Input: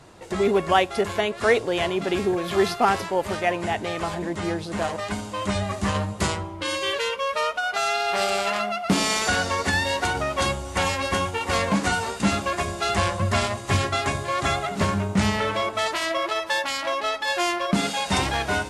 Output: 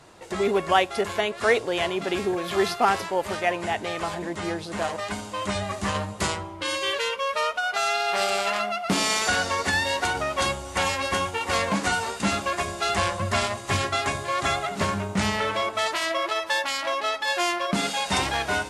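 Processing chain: low shelf 330 Hz -6 dB

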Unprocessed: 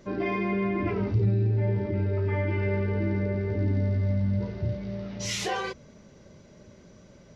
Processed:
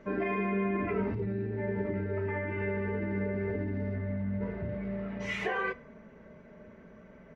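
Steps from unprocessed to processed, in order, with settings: resonant high shelf 3000 Hz -8 dB, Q 1.5, from 3.94 s -13.5 dB; reverb RT60 0.55 s, pre-delay 3 ms, DRR 13.5 dB; limiter -22 dBFS, peak gain reduction 6 dB; tone controls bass -4 dB, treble -9 dB; comb 4.5 ms, depth 47%

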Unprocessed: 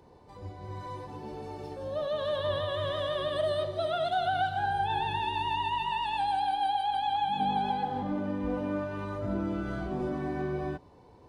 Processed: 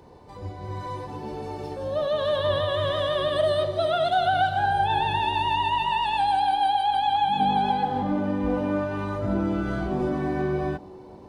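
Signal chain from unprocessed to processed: band-limited delay 0.453 s, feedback 73%, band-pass 420 Hz, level -22 dB; gain +6.5 dB

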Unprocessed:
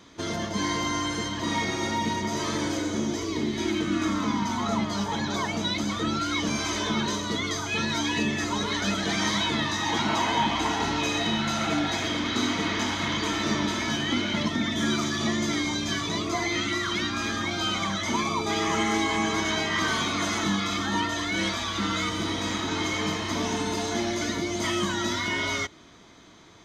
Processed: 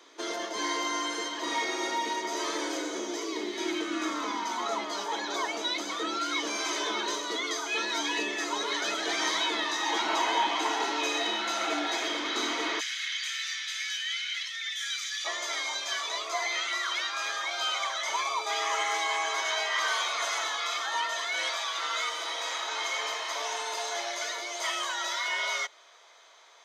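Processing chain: steep high-pass 330 Hz 36 dB/oct, from 12.79 s 1700 Hz, from 15.24 s 510 Hz; gain -1.5 dB

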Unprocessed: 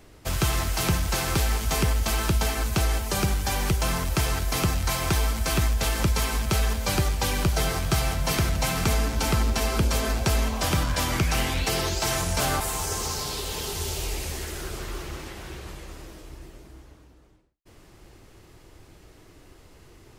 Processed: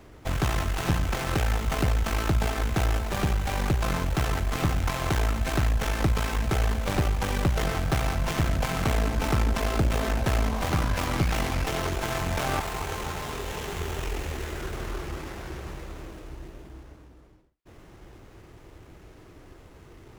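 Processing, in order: one diode to ground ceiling -23.5 dBFS; running maximum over 9 samples; gain +3 dB

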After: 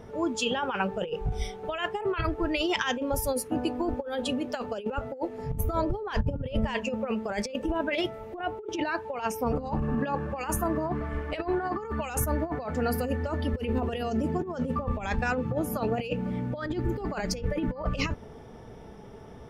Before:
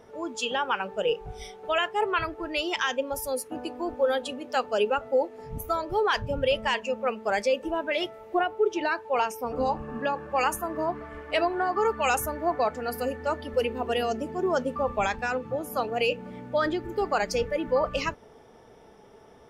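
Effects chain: tone controls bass +11 dB, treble -2 dB; negative-ratio compressor -28 dBFS, ratio -0.5; 5.64–6.75 tilt shelf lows +4 dB, about 890 Hz

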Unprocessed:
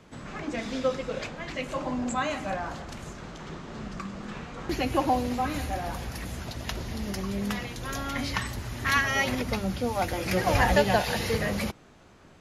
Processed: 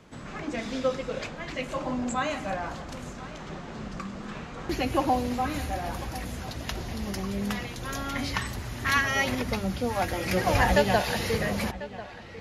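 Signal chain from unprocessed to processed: dark delay 1.044 s, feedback 50%, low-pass 3700 Hz, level -16 dB

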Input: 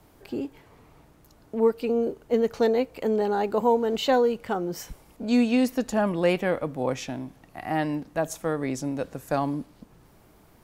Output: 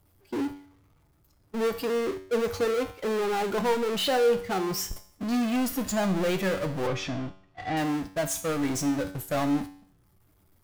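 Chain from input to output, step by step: per-bin expansion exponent 1.5; power-law curve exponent 0.35; gate -26 dBFS, range -22 dB; 6.87–7.77 LPF 3900 Hz 12 dB/oct; resonator 95 Hz, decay 0.57 s, harmonics all, mix 70%

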